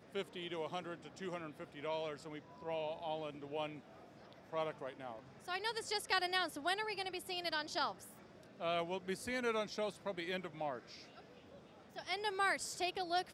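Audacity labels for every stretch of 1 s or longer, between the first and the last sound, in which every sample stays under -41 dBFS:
10.790000	11.970000	silence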